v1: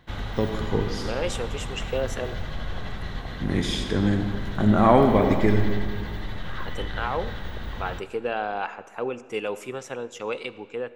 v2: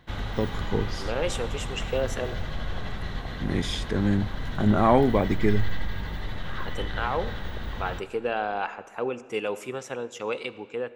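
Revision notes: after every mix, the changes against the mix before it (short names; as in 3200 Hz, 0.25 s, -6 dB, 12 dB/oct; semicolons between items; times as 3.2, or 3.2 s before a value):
first voice: send off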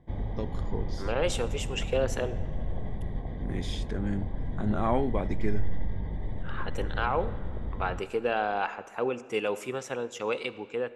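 first voice -8.0 dB; background: add running mean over 32 samples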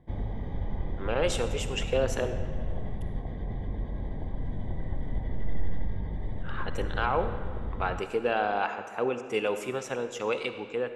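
first voice: muted; second voice: send +7.5 dB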